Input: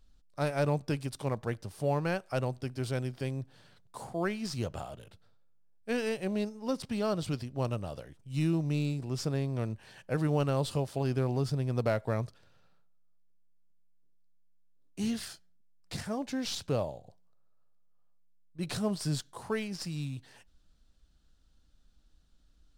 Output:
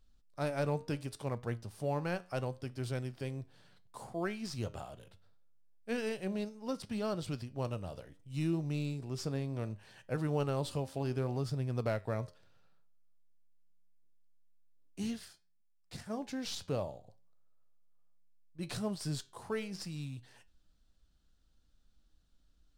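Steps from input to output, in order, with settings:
flanger 0.69 Hz, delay 8 ms, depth 3.4 ms, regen +82%
0:15.07–0:16.10: expander for the loud parts 1.5 to 1, over −51 dBFS

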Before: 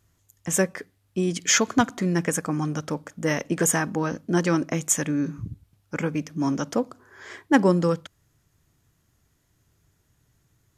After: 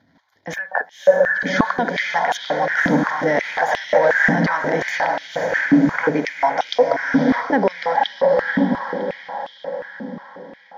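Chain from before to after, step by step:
de-essing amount 45%
gain on a spectral selection 0:00.55–0:01.41, 1,800–12,000 Hz −25 dB
speech leveller 0.5 s
phaser with its sweep stopped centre 1,800 Hz, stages 8
transient designer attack −6 dB, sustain +9 dB
high-frequency loss of the air 260 metres
feedback delay with all-pass diffusion 547 ms, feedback 55%, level −3 dB
boost into a limiter +22 dB
high-pass on a step sequencer 5.6 Hz 260–3,300 Hz
level −8.5 dB

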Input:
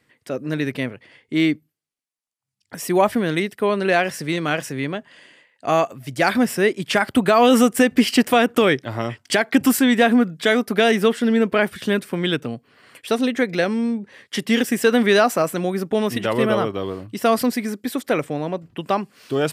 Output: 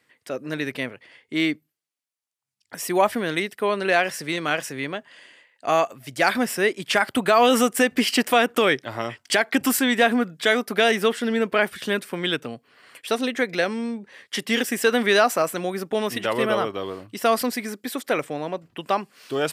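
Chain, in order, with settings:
low-shelf EQ 300 Hz −11 dB

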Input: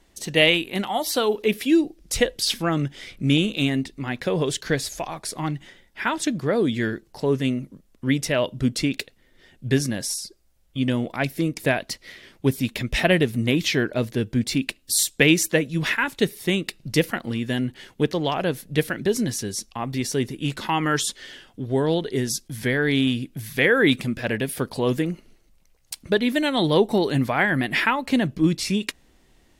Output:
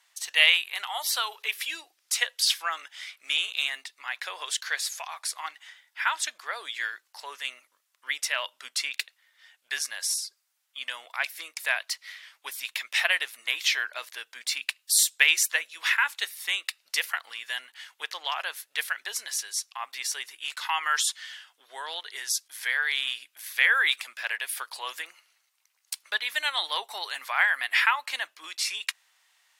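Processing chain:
high-pass filter 1,000 Hz 24 dB per octave

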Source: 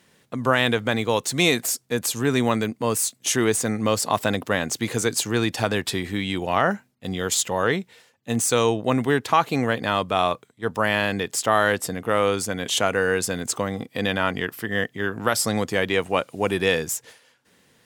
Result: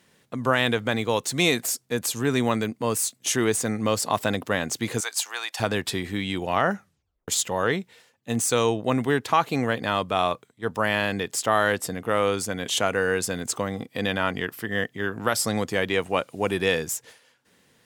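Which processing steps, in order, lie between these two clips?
0:05.00–0:05.60: Chebyshev high-pass filter 770 Hz, order 3
0:06.74: tape stop 0.54 s
level −2 dB

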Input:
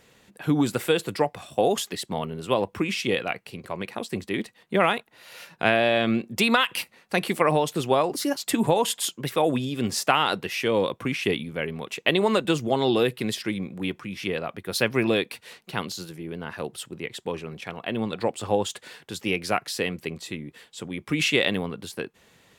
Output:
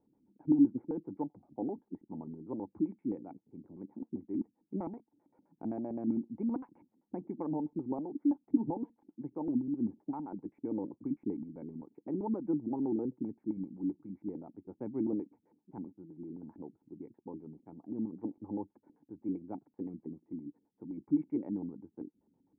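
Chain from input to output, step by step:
auto-filter low-pass square 7.7 Hz 250–1,500 Hz
formant resonators in series u
level −4.5 dB

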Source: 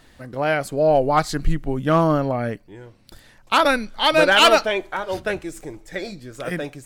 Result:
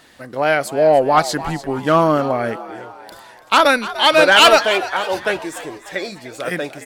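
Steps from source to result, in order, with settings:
high-pass filter 350 Hz 6 dB per octave
soft clipping −7.5 dBFS, distortion −20 dB
echo with shifted repeats 297 ms, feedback 50%, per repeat +87 Hz, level −15 dB
level +6 dB

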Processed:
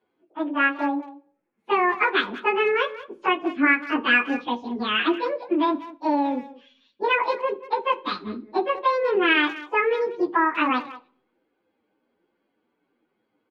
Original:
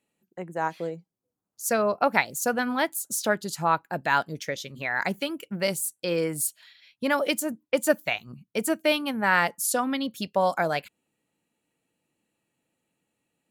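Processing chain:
phase-vocoder pitch shift without resampling +9.5 semitones
low-pass filter 3,200 Hz 24 dB per octave
spectral tilt −2 dB per octave
downward compressor 12 to 1, threshold −27 dBFS, peak gain reduction 8.5 dB
far-end echo of a speakerphone 190 ms, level −15 dB
convolution reverb RT60 0.50 s, pre-delay 3 ms, DRR 12 dB
level +6.5 dB

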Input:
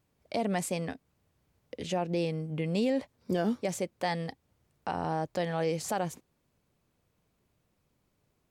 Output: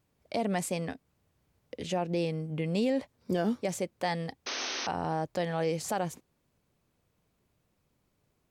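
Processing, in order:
sound drawn into the spectrogram noise, 0:04.46–0:04.87, 220–6,400 Hz −35 dBFS

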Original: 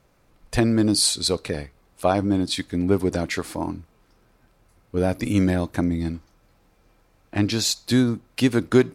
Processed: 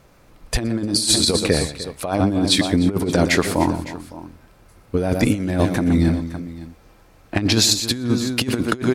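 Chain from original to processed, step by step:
multi-tap delay 120/302/560 ms −12.5/−16.5/−18 dB
compressor whose output falls as the input rises −23 dBFS, ratio −0.5
level +6 dB

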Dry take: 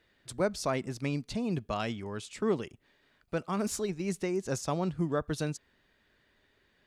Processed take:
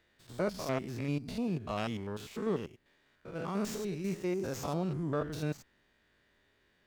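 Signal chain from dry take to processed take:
spectrum averaged block by block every 100 ms
windowed peak hold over 3 samples

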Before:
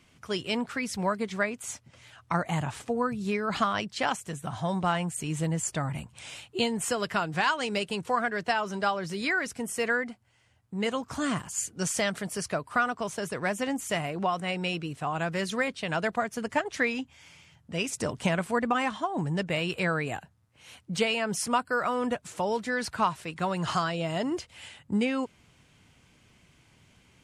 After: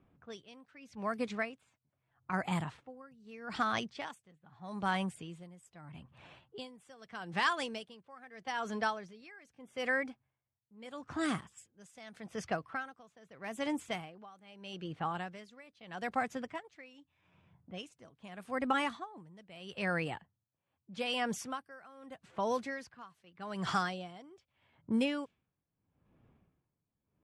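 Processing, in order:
low-pass that shuts in the quiet parts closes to 900 Hz, open at −23.5 dBFS
pitch shifter +1.5 semitones
tremolo with a sine in dB 0.8 Hz, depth 23 dB
level −4 dB

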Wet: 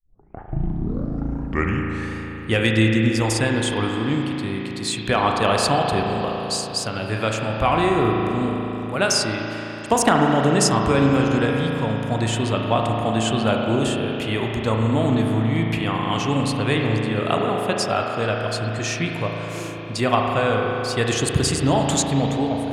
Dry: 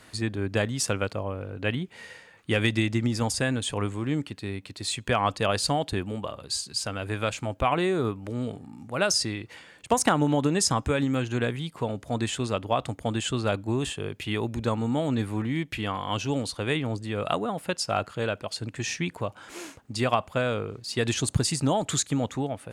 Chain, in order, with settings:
turntable start at the beginning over 2.18 s
spring reverb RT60 3.9 s, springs 36 ms, chirp 80 ms, DRR 0 dB
level +4 dB

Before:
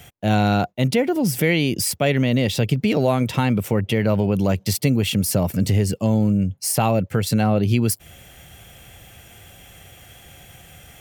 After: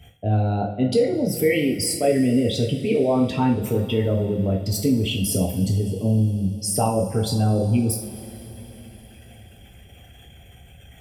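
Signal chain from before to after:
spectral envelope exaggerated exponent 2
coupled-rooms reverb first 0.42 s, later 4.3 s, from −19 dB, DRR −1 dB
level −4.5 dB

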